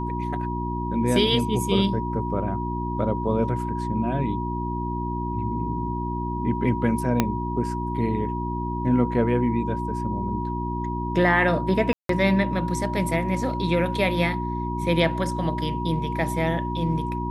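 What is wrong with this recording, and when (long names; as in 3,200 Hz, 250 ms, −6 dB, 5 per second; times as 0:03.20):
mains hum 60 Hz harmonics 6 −29 dBFS
whistle 960 Hz −30 dBFS
0:07.20: click −5 dBFS
0:11.93–0:12.09: drop-out 163 ms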